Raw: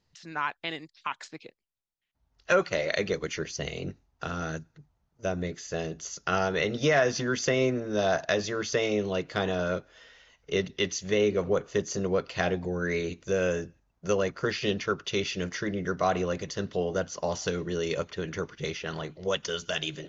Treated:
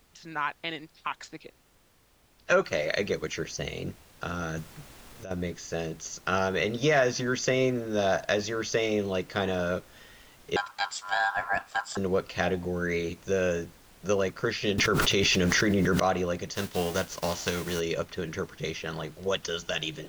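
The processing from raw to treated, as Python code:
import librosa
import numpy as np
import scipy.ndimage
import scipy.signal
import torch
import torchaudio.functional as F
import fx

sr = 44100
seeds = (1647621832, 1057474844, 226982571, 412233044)

y = fx.noise_floor_step(x, sr, seeds[0], at_s=2.65, before_db=-63, after_db=-55, tilt_db=3.0)
y = fx.over_compress(y, sr, threshold_db=-36.0, ratio=-1.0, at=(4.57, 5.31))
y = fx.ring_mod(y, sr, carrier_hz=1200.0, at=(10.56, 11.97))
y = fx.env_flatten(y, sr, amount_pct=100, at=(14.78, 16.0))
y = fx.envelope_flatten(y, sr, power=0.6, at=(16.54, 17.79), fade=0.02)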